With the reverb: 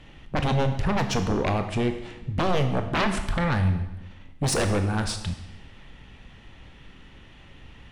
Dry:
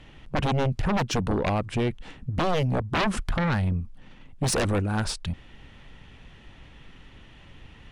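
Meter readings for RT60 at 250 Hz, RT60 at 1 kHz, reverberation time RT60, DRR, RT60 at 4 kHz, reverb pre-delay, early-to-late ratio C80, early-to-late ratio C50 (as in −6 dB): 1.0 s, 1.0 s, 1.0 s, 6.5 dB, 0.95 s, 21 ms, 11.0 dB, 9.0 dB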